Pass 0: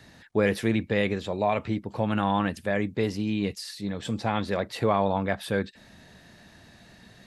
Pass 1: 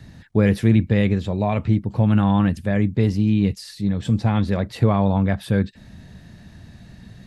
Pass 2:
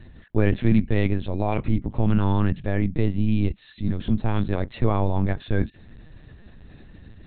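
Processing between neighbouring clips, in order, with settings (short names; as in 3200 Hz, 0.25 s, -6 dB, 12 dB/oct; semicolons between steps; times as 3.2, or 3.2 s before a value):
tone controls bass +15 dB, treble 0 dB
LPC vocoder at 8 kHz pitch kept; gain -2 dB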